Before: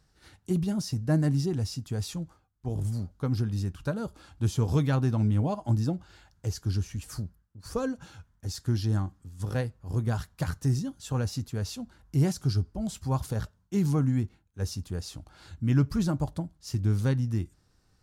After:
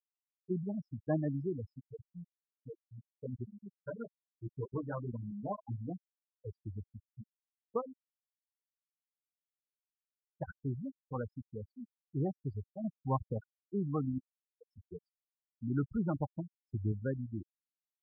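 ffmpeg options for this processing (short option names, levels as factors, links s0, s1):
-filter_complex "[0:a]asplit=3[s0][s1][s2];[s0]afade=t=out:st=1.88:d=0.02[s3];[s1]flanger=delay=15:depth=2.1:speed=1.1,afade=t=in:st=1.88:d=0.02,afade=t=out:st=5.9:d=0.02[s4];[s2]afade=t=in:st=5.9:d=0.02[s5];[s3][s4][s5]amix=inputs=3:normalize=0,asplit=3[s6][s7][s8];[s6]afade=t=out:st=7.8:d=0.02[s9];[s7]acompressor=threshold=0.0126:ratio=4:attack=3.2:release=140:knee=1:detection=peak,afade=t=in:st=7.8:d=0.02,afade=t=out:st=10.31:d=0.02[s10];[s8]afade=t=in:st=10.31:d=0.02[s11];[s9][s10][s11]amix=inputs=3:normalize=0,asettb=1/sr,asplit=3[s12][s13][s14];[s12]atrim=end=12.844[s15];[s13]atrim=start=12.84:end=13.38,asetpts=PTS-STARTPTS,afade=t=in:d=0.004:c=qsin,afade=t=out:st=0.536:d=0.004:c=qsin,lowshelf=f=250:g=7.5[s16];[s14]atrim=start=13.376[s17];[s15][s16]acrossfade=d=0.004:c1=hsin:c2=qsin[s18];[s18][s17]acrossfade=d=0.004:c1=qsin:c2=hsin,asettb=1/sr,asplit=3[s19][s20][s21];[s19]atrim=end=14.184[s22];[s20]atrim=start=14.18:end=14.73,asetpts=PTS-STARTPTS,afade=t=in:d=0.004:c=qsin,afade=t=out:st=0.546:d=0.004:c=qsin,acompressor=threshold=0.0224:ratio=5:attack=3.2:release=140:knee=1:detection=peak[s23];[s21]atrim=start=14.726[s24];[s22][s23]acrossfade=d=0.004:c1=hsin:c2=qsin[s25];[s25][s24]acrossfade=d=0.004:c1=qsin:c2=hsin,asettb=1/sr,asplit=3[s26][s27][s28];[s26]atrim=end=15.894[s29];[s27]atrim=start=15.89:end=16.92,asetpts=PTS-STARTPTS,afade=t=in:d=0.004:c=qsin,afade=t=out:st=1.026:d=0.004:c=qsin,lowshelf=f=100:g=12[s30];[s28]atrim=start=16.916[s31];[s29][s30]acrossfade=d=0.004:c1=hsin:c2=qsin[s32];[s32][s31]acrossfade=d=0.004:c1=qsin:c2=hsin,highpass=f=650:p=1,afftfilt=real='re*gte(hypot(re,im),0.0447)':imag='im*gte(hypot(re,im),0.0447)':win_size=1024:overlap=0.75,lowpass=f=1400:w=0.5412,lowpass=f=1400:w=1.3066,volume=1.19"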